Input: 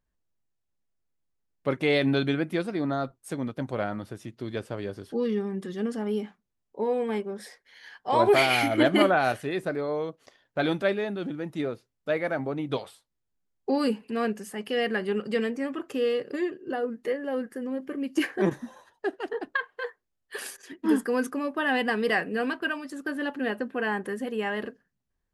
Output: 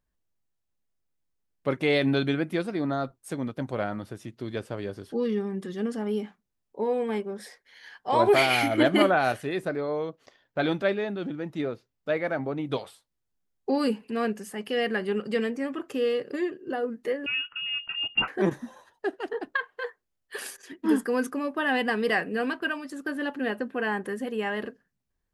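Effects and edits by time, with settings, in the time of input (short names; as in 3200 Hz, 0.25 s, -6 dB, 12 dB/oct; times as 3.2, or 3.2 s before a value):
9.68–12.65 bell 9800 Hz -8.5 dB
17.26–18.28 inverted band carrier 3100 Hz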